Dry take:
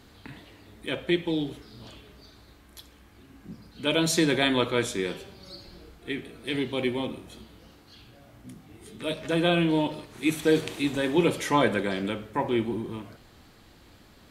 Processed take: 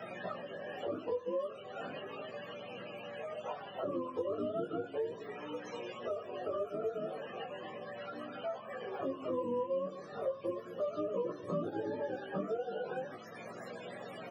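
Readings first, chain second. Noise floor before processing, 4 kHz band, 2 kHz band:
-55 dBFS, -20.0 dB, -15.5 dB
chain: spectrum mirrored in octaves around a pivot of 410 Hz; HPF 210 Hz 24 dB/oct; comb 1.7 ms, depth 48%; dynamic EQ 800 Hz, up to -8 dB, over -41 dBFS, Q 1.2; compressor 2:1, threshold -43 dBFS, peak gain reduction 12 dB; chorus 0.36 Hz, delay 16.5 ms, depth 3.8 ms; three-band squash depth 70%; gain +6.5 dB

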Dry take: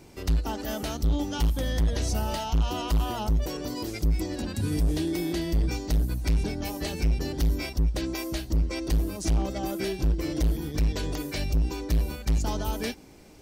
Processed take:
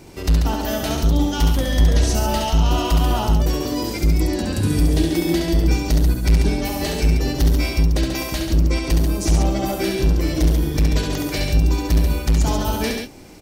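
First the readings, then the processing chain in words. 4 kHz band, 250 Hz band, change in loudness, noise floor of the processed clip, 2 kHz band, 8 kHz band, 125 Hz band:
+9.0 dB, +9.0 dB, +9.0 dB, -28 dBFS, +9.5 dB, +9.0 dB, +9.0 dB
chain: tapped delay 68/138 ms -4/-6 dB; gain +7 dB

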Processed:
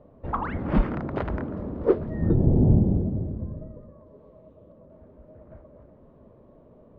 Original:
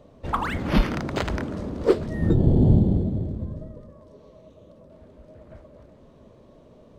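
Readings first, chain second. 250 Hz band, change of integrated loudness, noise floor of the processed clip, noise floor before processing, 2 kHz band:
-1.5 dB, -1.5 dB, -54 dBFS, -52 dBFS, n/a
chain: LPF 1400 Hz 12 dB/oct; gain -1.5 dB

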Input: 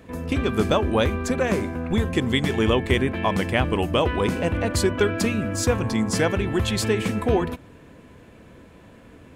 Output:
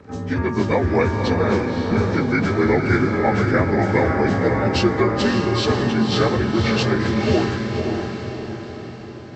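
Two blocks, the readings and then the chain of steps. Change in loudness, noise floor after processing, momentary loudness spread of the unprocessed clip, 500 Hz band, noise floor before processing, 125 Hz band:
+3.5 dB, -34 dBFS, 3 LU, +3.5 dB, -48 dBFS, +4.0 dB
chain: inharmonic rescaling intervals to 84%; diffused feedback echo 0.557 s, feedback 51%, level -4 dB; gain +4 dB

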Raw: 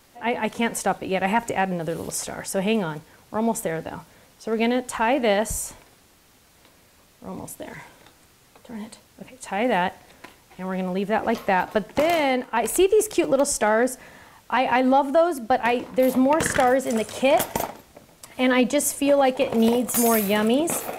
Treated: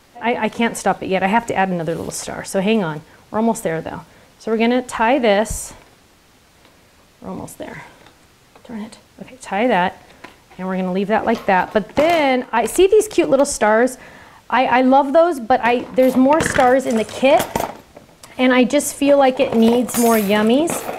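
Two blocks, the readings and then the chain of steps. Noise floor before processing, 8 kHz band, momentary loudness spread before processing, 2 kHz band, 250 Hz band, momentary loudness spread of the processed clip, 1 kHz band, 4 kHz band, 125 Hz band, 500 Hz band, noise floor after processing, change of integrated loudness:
-56 dBFS, +1.5 dB, 17 LU, +5.5 dB, +6.0 dB, 18 LU, +6.0 dB, +5.0 dB, +6.0 dB, +6.0 dB, -51 dBFS, +5.5 dB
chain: high shelf 8500 Hz -10 dB; gain +6 dB

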